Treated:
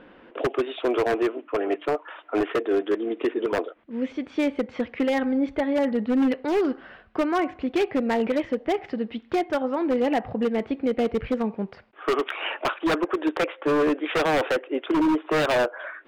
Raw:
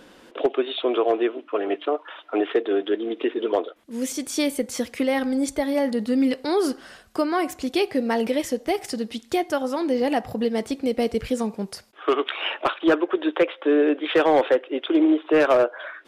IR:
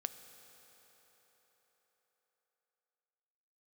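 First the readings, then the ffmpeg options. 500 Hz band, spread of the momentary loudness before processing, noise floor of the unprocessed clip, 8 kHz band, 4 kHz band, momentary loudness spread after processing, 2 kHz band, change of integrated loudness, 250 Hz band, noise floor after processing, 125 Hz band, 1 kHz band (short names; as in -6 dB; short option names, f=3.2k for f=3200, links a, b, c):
-2.5 dB, 9 LU, -51 dBFS, under -10 dB, -4.0 dB, 7 LU, 0.0 dB, -2.0 dB, -1.5 dB, -51 dBFS, +3.0 dB, -1.0 dB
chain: -af "lowpass=f=2.7k:w=0.5412,lowpass=f=2.7k:w=1.3066,aeval=exprs='0.158*(abs(mod(val(0)/0.158+3,4)-2)-1)':c=same"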